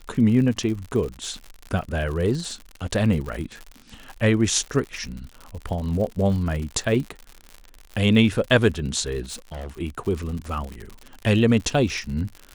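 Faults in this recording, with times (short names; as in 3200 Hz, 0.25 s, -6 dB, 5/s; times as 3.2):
crackle 81/s -30 dBFS
9.23–9.75 clipped -30.5 dBFS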